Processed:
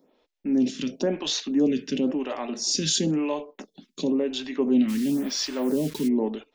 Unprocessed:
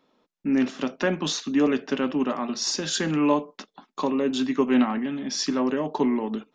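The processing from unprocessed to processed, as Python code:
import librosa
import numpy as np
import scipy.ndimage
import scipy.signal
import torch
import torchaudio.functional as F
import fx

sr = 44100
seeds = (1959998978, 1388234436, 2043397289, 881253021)

p1 = fx.peak_eq(x, sr, hz=1200.0, db=-13.5, octaves=1.1)
p2 = fx.over_compress(p1, sr, threshold_db=-30.0, ratio=-1.0)
p3 = p1 + (p2 * librosa.db_to_amplitude(-1.5))
p4 = fx.quant_dither(p3, sr, seeds[0], bits=6, dither='none', at=(4.88, 6.07), fade=0.02)
y = fx.stagger_phaser(p4, sr, hz=0.97)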